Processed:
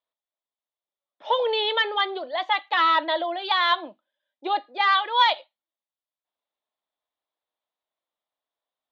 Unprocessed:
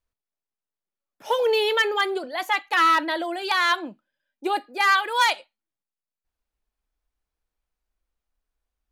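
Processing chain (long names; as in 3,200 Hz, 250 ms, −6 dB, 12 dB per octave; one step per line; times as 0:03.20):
loudspeaker in its box 400–3,700 Hz, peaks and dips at 420 Hz −4 dB, 620 Hz +6 dB, 1,000 Hz +3 dB, 1,500 Hz −6 dB, 2,500 Hz −6 dB, 3,600 Hz +9 dB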